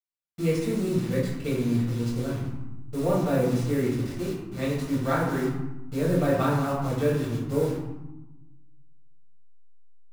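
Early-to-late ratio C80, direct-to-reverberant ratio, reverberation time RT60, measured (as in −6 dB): 5.0 dB, −7.5 dB, 1.1 s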